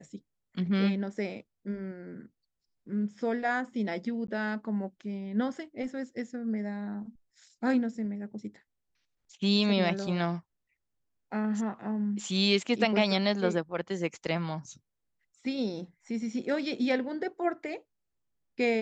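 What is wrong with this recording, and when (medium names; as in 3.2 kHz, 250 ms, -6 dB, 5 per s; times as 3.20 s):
4.27–4.28 s: dropout 13 ms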